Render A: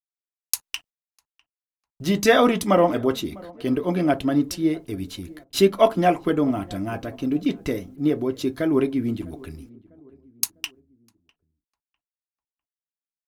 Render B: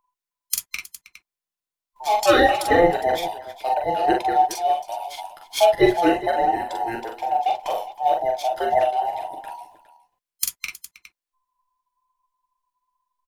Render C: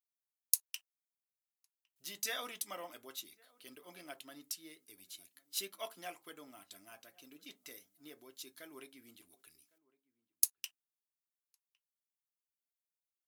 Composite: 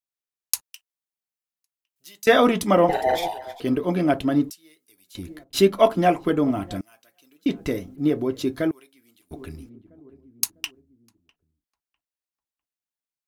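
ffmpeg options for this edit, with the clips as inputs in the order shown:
-filter_complex "[2:a]asplit=4[s0][s1][s2][s3];[0:a]asplit=6[s4][s5][s6][s7][s8][s9];[s4]atrim=end=0.612[s10];[s0]atrim=start=0.608:end=2.272[s11];[s5]atrim=start=2.268:end=2.892[s12];[1:a]atrim=start=2.888:end=3.602[s13];[s6]atrim=start=3.598:end=4.502[s14];[s1]atrim=start=4.498:end=5.152[s15];[s7]atrim=start=5.148:end=6.812[s16];[s2]atrim=start=6.808:end=7.462[s17];[s8]atrim=start=7.458:end=8.712[s18];[s3]atrim=start=8.708:end=9.312[s19];[s9]atrim=start=9.308[s20];[s10][s11]acrossfade=d=0.004:c1=hsin:c2=hsin[s21];[s21][s12]acrossfade=d=0.004:c1=hsin:c2=hsin[s22];[s22][s13]acrossfade=d=0.004:c1=hsin:c2=hsin[s23];[s23][s14]acrossfade=d=0.004:c1=hsin:c2=hsin[s24];[s24][s15]acrossfade=d=0.004:c1=hsin:c2=hsin[s25];[s25][s16]acrossfade=d=0.004:c1=hsin:c2=hsin[s26];[s26][s17]acrossfade=d=0.004:c1=hsin:c2=hsin[s27];[s27][s18]acrossfade=d=0.004:c1=hsin:c2=hsin[s28];[s28][s19]acrossfade=d=0.004:c1=hsin:c2=hsin[s29];[s29][s20]acrossfade=d=0.004:c1=hsin:c2=hsin"

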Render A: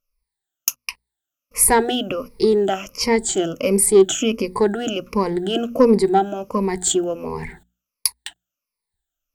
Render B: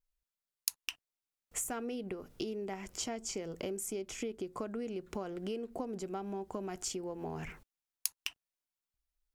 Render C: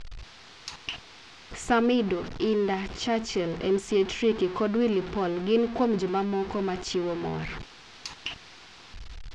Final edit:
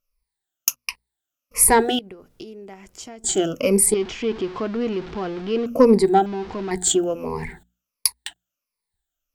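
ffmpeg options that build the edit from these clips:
-filter_complex "[2:a]asplit=2[s0][s1];[0:a]asplit=4[s2][s3][s4][s5];[s2]atrim=end=1.992[s6];[1:a]atrim=start=1.988:end=3.242[s7];[s3]atrim=start=3.238:end=3.942[s8];[s0]atrim=start=3.938:end=5.662[s9];[s4]atrim=start=5.658:end=6.262[s10];[s1]atrim=start=6.258:end=6.712[s11];[s5]atrim=start=6.708[s12];[s6][s7]acrossfade=d=0.004:c1=hsin:c2=hsin[s13];[s13][s8]acrossfade=d=0.004:c1=hsin:c2=hsin[s14];[s14][s9]acrossfade=d=0.004:c1=hsin:c2=hsin[s15];[s15][s10]acrossfade=d=0.004:c1=hsin:c2=hsin[s16];[s16][s11]acrossfade=d=0.004:c1=hsin:c2=hsin[s17];[s17][s12]acrossfade=d=0.004:c1=hsin:c2=hsin"

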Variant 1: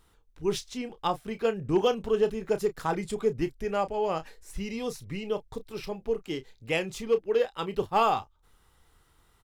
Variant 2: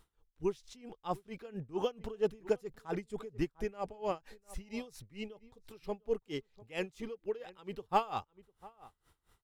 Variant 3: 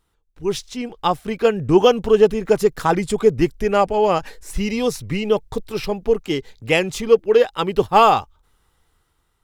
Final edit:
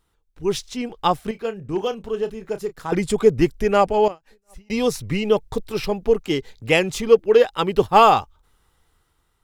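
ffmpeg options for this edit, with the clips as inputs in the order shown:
-filter_complex "[2:a]asplit=3[s0][s1][s2];[s0]atrim=end=1.312[s3];[0:a]atrim=start=1.308:end=2.922[s4];[s1]atrim=start=2.918:end=4.082[s5];[1:a]atrim=start=4.078:end=4.702[s6];[s2]atrim=start=4.698[s7];[s3][s4]acrossfade=d=0.004:c1=hsin:c2=hsin[s8];[s8][s5]acrossfade=d=0.004:c1=hsin:c2=hsin[s9];[s9][s6]acrossfade=d=0.004:c1=hsin:c2=hsin[s10];[s10][s7]acrossfade=d=0.004:c1=hsin:c2=hsin"

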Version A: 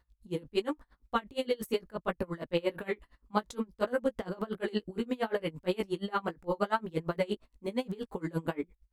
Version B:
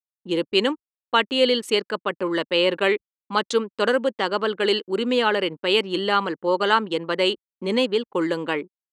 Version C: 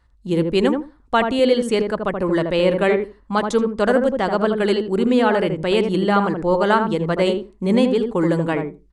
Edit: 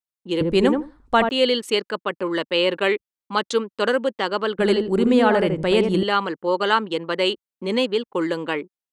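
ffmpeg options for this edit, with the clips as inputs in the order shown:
-filter_complex "[2:a]asplit=2[s0][s1];[1:a]asplit=3[s2][s3][s4];[s2]atrim=end=0.412[s5];[s0]atrim=start=0.408:end=1.292[s6];[s3]atrim=start=1.288:end=4.592[s7];[s1]atrim=start=4.588:end=6.032[s8];[s4]atrim=start=6.028[s9];[s5][s6]acrossfade=d=0.004:c1=hsin:c2=hsin[s10];[s10][s7]acrossfade=d=0.004:c1=hsin:c2=hsin[s11];[s11][s8]acrossfade=d=0.004:c1=hsin:c2=hsin[s12];[s12][s9]acrossfade=d=0.004:c1=hsin:c2=hsin"

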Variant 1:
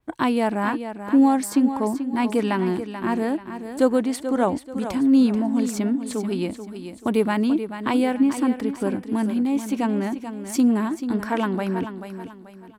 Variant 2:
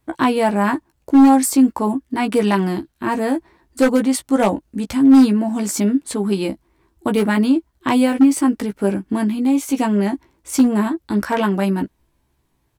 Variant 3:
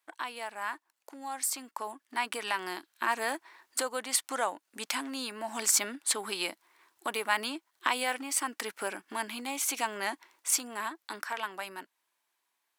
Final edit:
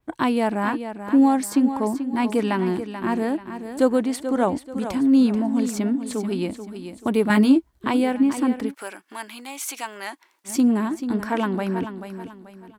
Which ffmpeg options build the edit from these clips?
-filter_complex "[0:a]asplit=3[s0][s1][s2];[s0]atrim=end=7.302[s3];[1:a]atrim=start=7.298:end=7.842[s4];[s1]atrim=start=7.838:end=8.75[s5];[2:a]atrim=start=8.65:end=10.54[s6];[s2]atrim=start=10.44[s7];[s3][s4]acrossfade=d=0.004:c1=hsin:c2=hsin[s8];[s8][s5]acrossfade=d=0.004:c1=hsin:c2=hsin[s9];[s9][s6]acrossfade=d=0.1:c1=tri:c2=tri[s10];[s10][s7]acrossfade=d=0.1:c1=tri:c2=tri"

